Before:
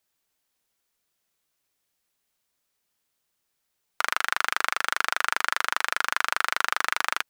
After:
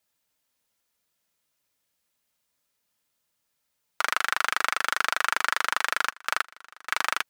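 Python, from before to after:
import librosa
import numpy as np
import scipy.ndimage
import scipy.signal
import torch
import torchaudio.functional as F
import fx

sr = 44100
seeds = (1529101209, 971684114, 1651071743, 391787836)

y = fx.notch_comb(x, sr, f0_hz=380.0)
y = fx.step_gate(y, sr, bpm=187, pattern='......xx', floor_db=-24.0, edge_ms=4.5, at=(6.1, 6.88), fade=0.02)
y = y * 10.0 ** (1.5 / 20.0)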